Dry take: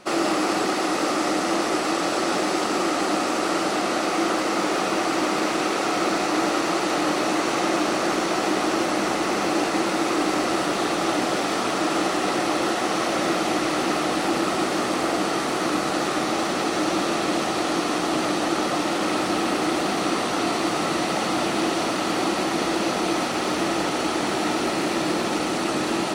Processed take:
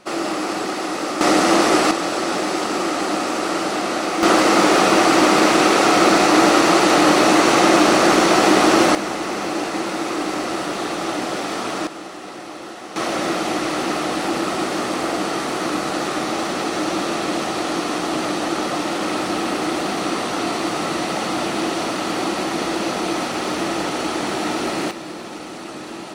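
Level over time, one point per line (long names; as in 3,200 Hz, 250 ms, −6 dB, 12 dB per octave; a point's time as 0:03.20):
−1 dB
from 0:01.21 +8 dB
from 0:01.91 +1.5 dB
from 0:04.23 +9 dB
from 0:08.95 −1 dB
from 0:11.87 −11 dB
from 0:12.96 +1 dB
from 0:24.91 −8.5 dB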